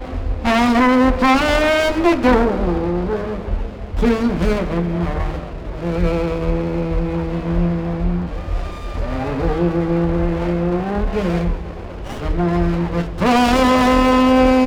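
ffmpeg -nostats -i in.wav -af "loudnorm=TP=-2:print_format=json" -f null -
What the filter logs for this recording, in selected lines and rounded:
"input_i" : "-17.5",
"input_tp" : "-3.5",
"input_lra" : "5.7",
"input_thresh" : "-27.7",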